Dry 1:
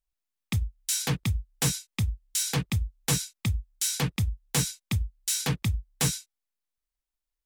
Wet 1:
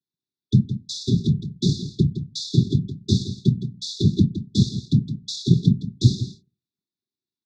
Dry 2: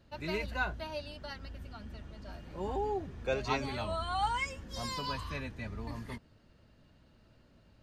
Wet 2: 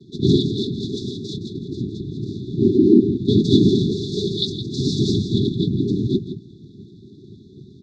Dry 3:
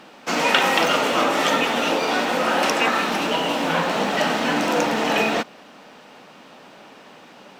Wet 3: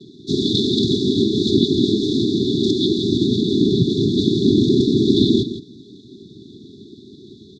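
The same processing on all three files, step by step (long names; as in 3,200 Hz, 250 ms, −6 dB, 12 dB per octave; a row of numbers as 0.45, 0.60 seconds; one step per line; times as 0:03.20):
mains-hum notches 60/120/180 Hz
cochlear-implant simulation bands 6
linear-phase brick-wall band-stop 420–3,400 Hz
high-frequency loss of the air 270 metres
single-tap delay 165 ms −11.5 dB
normalise the peak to −2 dBFS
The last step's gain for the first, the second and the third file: +12.5, +25.0, +12.0 decibels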